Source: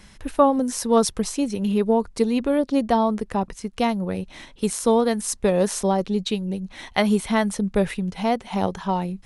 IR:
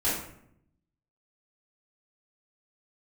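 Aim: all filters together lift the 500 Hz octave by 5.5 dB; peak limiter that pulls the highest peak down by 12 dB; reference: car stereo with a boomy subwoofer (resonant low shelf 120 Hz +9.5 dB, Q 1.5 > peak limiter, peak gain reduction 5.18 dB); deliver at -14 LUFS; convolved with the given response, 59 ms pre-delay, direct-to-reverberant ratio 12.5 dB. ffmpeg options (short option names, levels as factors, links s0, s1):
-filter_complex "[0:a]equalizer=f=500:t=o:g=7,alimiter=limit=0.237:level=0:latency=1,asplit=2[s0][s1];[1:a]atrim=start_sample=2205,adelay=59[s2];[s1][s2]afir=irnorm=-1:irlink=0,volume=0.075[s3];[s0][s3]amix=inputs=2:normalize=0,lowshelf=f=120:t=q:w=1.5:g=9.5,volume=3.76,alimiter=limit=0.668:level=0:latency=1"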